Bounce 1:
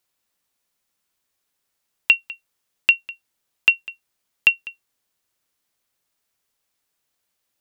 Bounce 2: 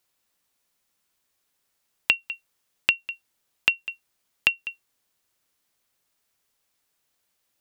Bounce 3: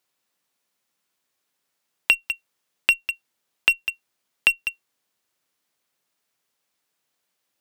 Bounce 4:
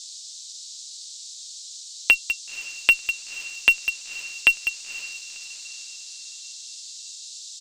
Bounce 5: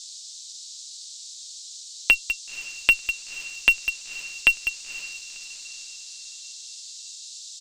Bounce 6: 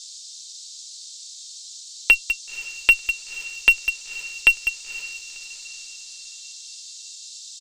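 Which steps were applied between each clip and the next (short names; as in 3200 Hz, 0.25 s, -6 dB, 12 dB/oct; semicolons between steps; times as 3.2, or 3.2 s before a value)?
compressor 6:1, threshold -19 dBFS, peak gain reduction 9.5 dB; gain +1.5 dB
HPF 130 Hz 12 dB/oct; high shelf 6500 Hz -4 dB; in parallel at -7.5 dB: fuzz box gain 29 dB, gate -33 dBFS
comb 7 ms, depth 40%; band noise 3700–7800 Hz -40 dBFS; diffused feedback echo 0.513 s, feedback 46%, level -16 dB
low shelf 150 Hz +9 dB; gain -1 dB
comb 2.2 ms, depth 43%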